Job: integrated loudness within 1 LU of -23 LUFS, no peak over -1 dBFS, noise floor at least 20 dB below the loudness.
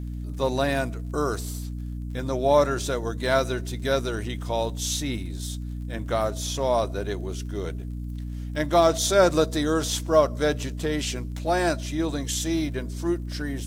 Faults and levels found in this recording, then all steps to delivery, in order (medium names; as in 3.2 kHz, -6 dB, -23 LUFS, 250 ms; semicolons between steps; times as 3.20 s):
tick rate 34 per s; hum 60 Hz; highest harmonic 300 Hz; hum level -30 dBFS; loudness -26.0 LUFS; peak level -6.0 dBFS; loudness target -23.0 LUFS
-> de-click; de-hum 60 Hz, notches 5; trim +3 dB